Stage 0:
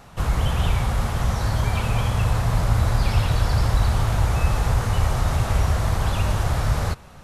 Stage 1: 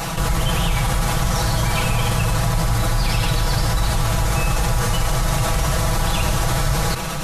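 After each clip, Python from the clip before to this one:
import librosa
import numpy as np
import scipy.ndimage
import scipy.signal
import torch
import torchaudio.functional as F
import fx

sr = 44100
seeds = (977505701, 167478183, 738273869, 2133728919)

y = fx.high_shelf(x, sr, hz=3400.0, db=8.0)
y = y + 0.99 * np.pad(y, (int(6.1 * sr / 1000.0), 0))[:len(y)]
y = fx.env_flatten(y, sr, amount_pct=70)
y = y * librosa.db_to_amplitude(-4.0)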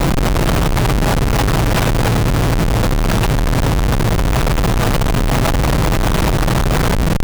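y = fx.schmitt(x, sr, flips_db=-20.5)
y = y * librosa.db_to_amplitude(5.0)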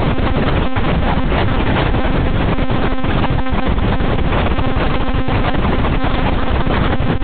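y = fx.lpc_monotone(x, sr, seeds[0], pitch_hz=260.0, order=10)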